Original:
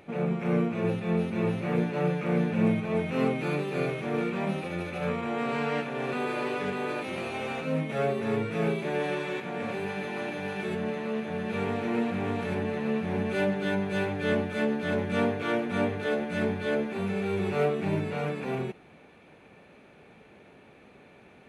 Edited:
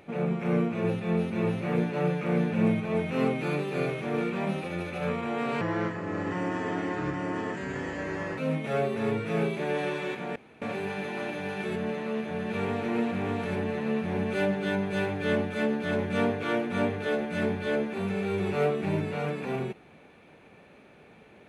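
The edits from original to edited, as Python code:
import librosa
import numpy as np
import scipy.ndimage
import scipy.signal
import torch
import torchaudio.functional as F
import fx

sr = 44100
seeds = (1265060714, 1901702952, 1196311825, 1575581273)

y = fx.edit(x, sr, fx.speed_span(start_s=5.61, length_s=2.02, speed=0.73),
    fx.insert_room_tone(at_s=9.61, length_s=0.26), tone=tone)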